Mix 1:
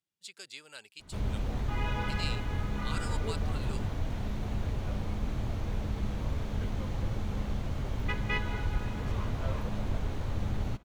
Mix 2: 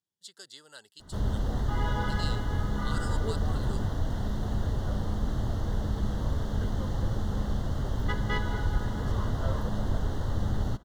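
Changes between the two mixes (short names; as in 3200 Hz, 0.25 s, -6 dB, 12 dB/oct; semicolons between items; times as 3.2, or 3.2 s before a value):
background +3.5 dB; master: add Butterworth band-stop 2400 Hz, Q 2.2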